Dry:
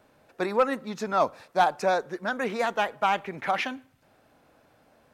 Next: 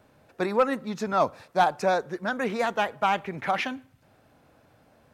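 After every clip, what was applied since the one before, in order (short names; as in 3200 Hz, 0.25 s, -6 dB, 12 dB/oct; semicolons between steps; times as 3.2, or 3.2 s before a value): bell 100 Hz +7 dB 1.9 oct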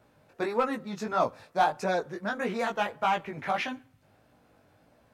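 chorus 1.6 Hz, delay 16.5 ms, depth 3.9 ms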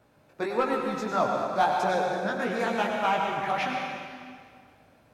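reverb RT60 2.0 s, pre-delay 89 ms, DRR 1 dB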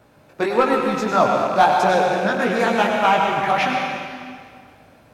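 rattling part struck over -40 dBFS, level -35 dBFS; gain +9 dB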